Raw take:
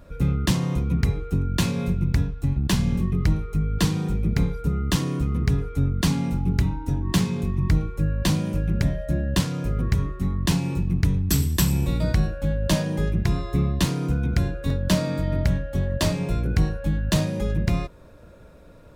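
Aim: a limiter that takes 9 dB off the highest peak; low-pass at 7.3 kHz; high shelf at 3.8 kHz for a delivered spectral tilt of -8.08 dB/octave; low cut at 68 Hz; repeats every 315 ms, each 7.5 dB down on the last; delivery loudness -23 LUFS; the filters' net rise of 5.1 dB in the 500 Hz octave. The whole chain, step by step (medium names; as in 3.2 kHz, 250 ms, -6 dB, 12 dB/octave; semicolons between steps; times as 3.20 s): high-pass 68 Hz; low-pass 7.3 kHz; peaking EQ 500 Hz +6.5 dB; treble shelf 3.8 kHz -6.5 dB; peak limiter -16 dBFS; feedback delay 315 ms, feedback 42%, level -7.5 dB; trim +2.5 dB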